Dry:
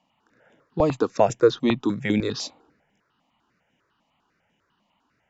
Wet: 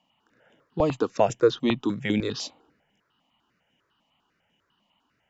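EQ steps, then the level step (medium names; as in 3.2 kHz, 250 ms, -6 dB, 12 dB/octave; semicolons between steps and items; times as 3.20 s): peaking EQ 3 kHz +8 dB 0.25 oct; -2.5 dB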